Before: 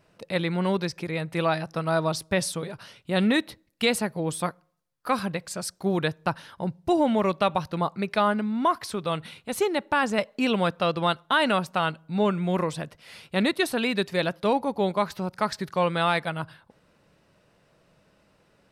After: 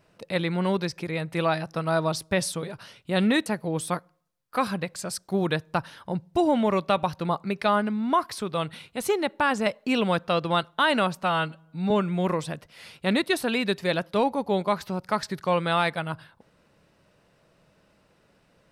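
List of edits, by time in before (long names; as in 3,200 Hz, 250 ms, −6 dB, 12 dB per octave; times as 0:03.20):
0:03.46–0:03.98: remove
0:11.75–0:12.20: time-stretch 1.5×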